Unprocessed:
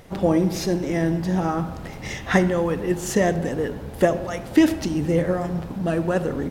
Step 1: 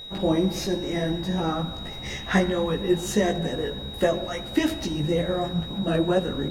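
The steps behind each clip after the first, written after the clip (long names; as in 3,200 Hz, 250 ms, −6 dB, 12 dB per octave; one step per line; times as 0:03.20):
multi-voice chorus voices 6, 1.4 Hz, delay 17 ms, depth 3 ms
steady tone 3,800 Hz −37 dBFS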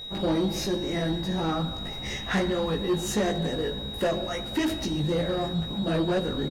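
double-tracking delay 19 ms −13 dB
soft clipping −19.5 dBFS, distortion −12 dB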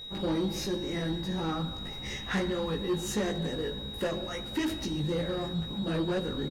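parametric band 670 Hz −7 dB 0.28 octaves
level −4 dB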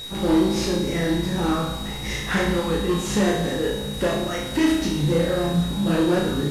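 linear delta modulator 64 kbit/s, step −42 dBFS
on a send: flutter between parallel walls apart 5.9 metres, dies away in 0.62 s
on the sum: level +7.5 dB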